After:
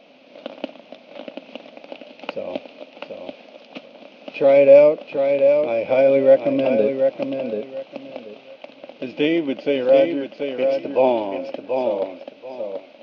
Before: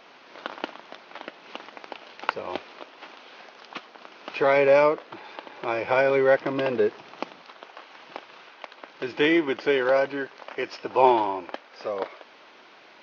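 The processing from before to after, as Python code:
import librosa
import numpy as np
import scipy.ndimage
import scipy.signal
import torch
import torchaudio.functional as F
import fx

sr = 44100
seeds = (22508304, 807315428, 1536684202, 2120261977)

p1 = fx.curve_eq(x, sr, hz=(110.0, 260.0, 380.0, 570.0, 960.0, 1800.0, 2500.0, 5900.0), db=(0, 12, -3, 11, -9, -11, 3, -5))
p2 = p1 + fx.echo_feedback(p1, sr, ms=734, feedback_pct=23, wet_db=-6.0, dry=0)
y = p2 * 10.0 ** (-1.0 / 20.0)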